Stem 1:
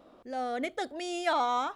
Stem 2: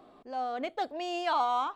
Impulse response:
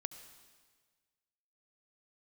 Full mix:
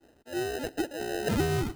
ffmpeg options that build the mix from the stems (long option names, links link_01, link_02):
-filter_complex "[0:a]lowpass=frequency=1900:width=0.5412,lowpass=frequency=1900:width=1.3066,acompressor=threshold=-36dB:ratio=6,volume=-12.5dB[link_01];[1:a]acrusher=samples=39:mix=1:aa=0.000001,volume=-1,volume=-2dB,asplit=2[link_02][link_03];[link_03]volume=-7.5dB[link_04];[2:a]atrim=start_sample=2205[link_05];[link_04][link_05]afir=irnorm=-1:irlink=0[link_06];[link_01][link_02][link_06]amix=inputs=3:normalize=0,equalizer=frequency=330:width_type=o:width=0.44:gain=4.5,agate=range=-33dB:threshold=-48dB:ratio=3:detection=peak"